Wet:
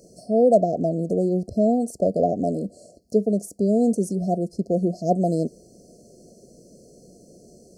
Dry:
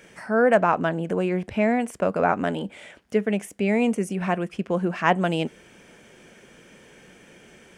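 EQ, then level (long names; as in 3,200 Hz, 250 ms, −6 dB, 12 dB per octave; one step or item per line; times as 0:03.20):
linear-phase brick-wall band-stop 740–4,100 Hz
+2.5 dB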